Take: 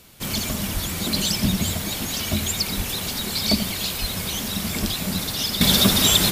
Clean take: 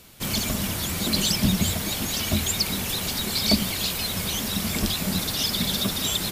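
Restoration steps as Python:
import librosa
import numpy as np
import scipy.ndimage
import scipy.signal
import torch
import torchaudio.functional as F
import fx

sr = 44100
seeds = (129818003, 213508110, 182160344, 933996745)

y = fx.fix_deplosive(x, sr, at_s=(0.73, 2.76, 4.0))
y = fx.fix_echo_inverse(y, sr, delay_ms=85, level_db=-13.0)
y = fx.gain(y, sr, db=fx.steps((0.0, 0.0), (5.61, -8.5)))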